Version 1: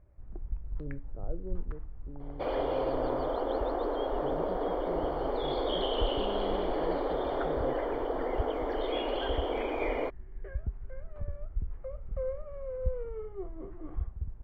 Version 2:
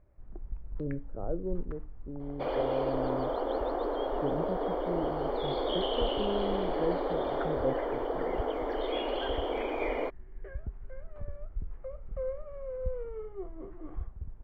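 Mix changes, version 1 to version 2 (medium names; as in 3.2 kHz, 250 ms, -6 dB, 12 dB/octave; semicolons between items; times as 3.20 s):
speech +8.0 dB; master: add peaking EQ 70 Hz -5 dB 2.1 oct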